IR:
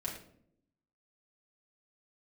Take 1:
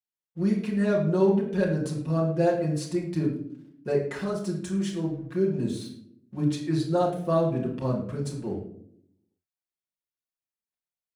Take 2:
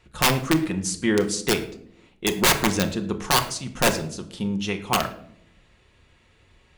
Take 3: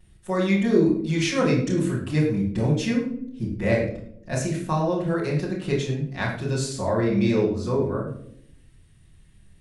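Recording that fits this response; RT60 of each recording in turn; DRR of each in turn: 1; 0.70, 0.70, 0.65 seconds; −3.5, 5.5, −10.0 decibels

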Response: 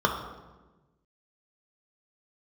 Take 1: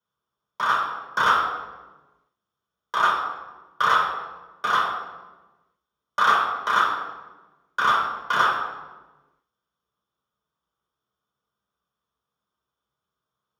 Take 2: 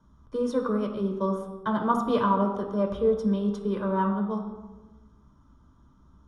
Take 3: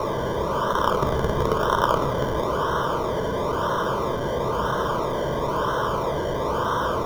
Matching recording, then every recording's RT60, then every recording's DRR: 2; 1.2, 1.2, 1.2 seconds; −6.5, 1.0, 7.5 decibels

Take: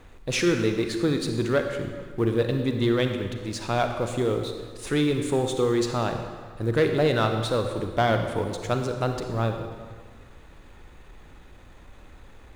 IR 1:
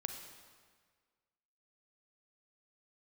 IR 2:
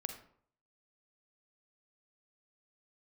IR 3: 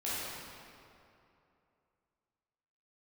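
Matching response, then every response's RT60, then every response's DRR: 1; 1.7, 0.60, 2.8 seconds; 5.0, 6.5, −10.5 decibels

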